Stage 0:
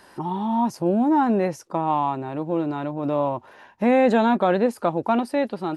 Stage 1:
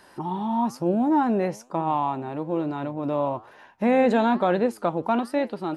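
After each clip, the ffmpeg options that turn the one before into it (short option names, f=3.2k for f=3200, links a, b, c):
-af "flanger=delay=5.5:depth=7.5:regen=88:speed=1.1:shape=triangular,volume=2.5dB"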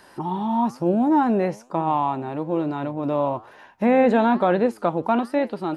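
-filter_complex "[0:a]acrossover=split=3100[a][b];[b]acompressor=threshold=-49dB:ratio=4:attack=1:release=60[c];[a][c]amix=inputs=2:normalize=0,volume=2.5dB"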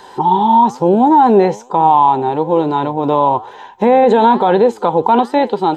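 -af "superequalizer=7b=2.51:9b=3.16:13b=2.51:15b=1.78:16b=0.398,alimiter=level_in=8dB:limit=-1dB:release=50:level=0:latency=1,volume=-1dB"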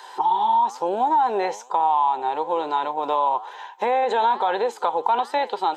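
-af "highpass=760,acompressor=threshold=-17dB:ratio=2.5,volume=-1.5dB"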